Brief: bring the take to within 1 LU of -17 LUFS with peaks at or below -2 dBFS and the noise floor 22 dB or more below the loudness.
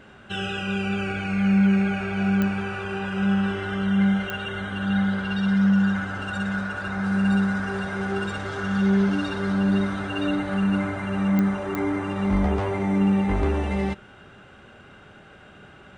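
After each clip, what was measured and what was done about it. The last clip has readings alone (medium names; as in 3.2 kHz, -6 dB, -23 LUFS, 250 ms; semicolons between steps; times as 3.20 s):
clicks found 4; loudness -24.0 LUFS; peak level -9.0 dBFS; loudness target -17.0 LUFS
-> de-click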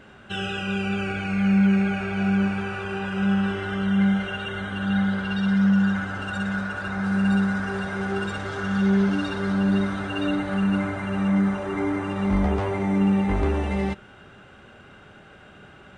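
clicks found 0; loudness -24.0 LUFS; peak level -11.0 dBFS; loudness target -17.0 LUFS
-> trim +7 dB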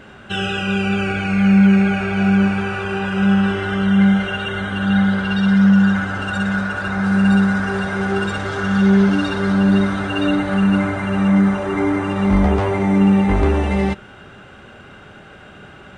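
loudness -17.0 LUFS; peak level -4.0 dBFS; noise floor -42 dBFS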